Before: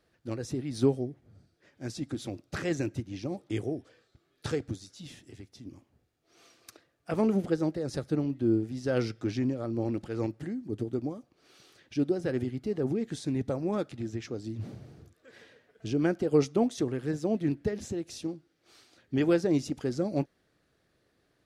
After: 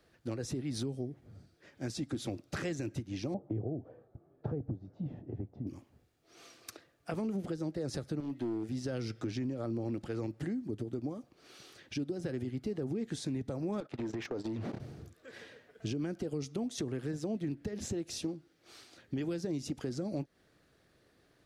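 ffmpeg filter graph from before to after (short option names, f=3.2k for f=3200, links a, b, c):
-filter_complex "[0:a]asettb=1/sr,asplit=3[a][b][c];[a]atrim=end=3.344[d];[b]atrim=start=3.34:end=5.67,asetpts=PTS-STARTPTS,afade=t=in:d=0.004:c=qsin,afade=t=out:st=2.326:d=0.004:c=qsin,lowpass=f=720:t=q:w=2.1,equalizer=f=130:w=0.72:g=7.5[e];[c]atrim=start=5.666[f];[d][e]acrossfade=d=0.004:c1=hsin:c2=qsin[g];[g][f]acrossfade=d=0.004:c1=qsin:c2=hsin,asettb=1/sr,asplit=3[h][i][j];[h]atrim=end=8.204[k];[i]atrim=start=8.2:end=8.69,asetpts=PTS-STARTPTS,afade=t=in:d=0.004:c=qsin,afade=t=out:st=0.486:d=0.004:c=qsin,lowshelf=f=170:g=-11,acompressor=threshold=-29dB:ratio=6:attack=3.2:release=140:knee=1:detection=peak,aeval=exprs='clip(val(0),-1,0.0282)':c=same[l];[j]atrim=start=8.686[m];[k][l]acrossfade=d=0.004:c1=hsin:c2=qsin[n];[n][m]acrossfade=d=0.004:c1=qsin:c2=hsin,asettb=1/sr,asplit=3[o][p][q];[o]atrim=end=13.804[r];[p]atrim=start=13.8:end=14.8,asetpts=PTS-STARTPTS,afade=t=in:d=0.004:c=qsin,afade=t=out:st=0.996:d=0.004:c=qsin,agate=range=-23dB:threshold=-42dB:ratio=16:release=100:detection=peak,acompressor=threshold=-44dB:ratio=16:attack=3.2:release=140:knee=1:detection=peak,asplit=2[s][t];[t]highpass=f=720:p=1,volume=29dB,asoftclip=type=tanh:threshold=-26dB[u];[s][u]amix=inputs=2:normalize=0,lowpass=f=1.2k:p=1,volume=-6dB[v];[q]atrim=start=14.796[w];[r][v]acrossfade=d=0.004:c1=hsin:c2=qsin[x];[x][w]acrossfade=d=0.004:c1=qsin:c2=hsin,acrossover=split=280|3000[y][z][aa];[z]acompressor=threshold=-32dB:ratio=6[ab];[y][ab][aa]amix=inputs=3:normalize=0,alimiter=level_in=2dB:limit=-24dB:level=0:latency=1:release=204,volume=-2dB,acompressor=threshold=-39dB:ratio=2,volume=3.5dB"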